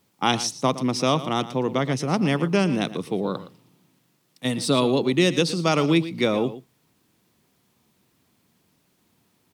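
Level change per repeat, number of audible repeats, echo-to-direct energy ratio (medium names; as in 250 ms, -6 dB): no regular repeats, 1, -14.5 dB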